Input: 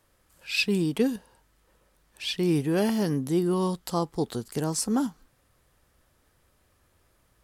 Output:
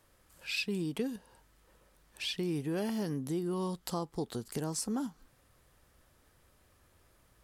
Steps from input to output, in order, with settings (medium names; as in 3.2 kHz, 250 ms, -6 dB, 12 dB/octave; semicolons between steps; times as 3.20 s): compression 2.5:1, threshold -36 dBFS, peak gain reduction 11.5 dB